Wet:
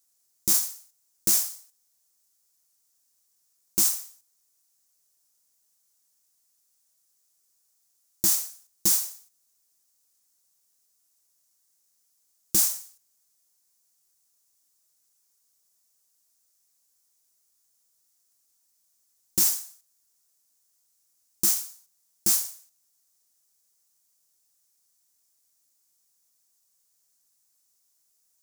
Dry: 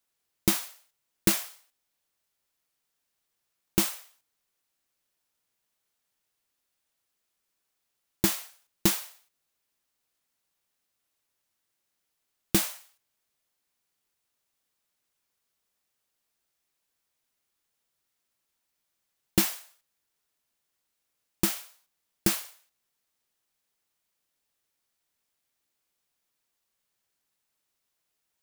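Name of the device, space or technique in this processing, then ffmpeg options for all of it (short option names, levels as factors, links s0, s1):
over-bright horn tweeter: -af "highshelf=f=4300:t=q:w=1.5:g=12.5,alimiter=limit=0.398:level=0:latency=1:release=12,volume=0.794"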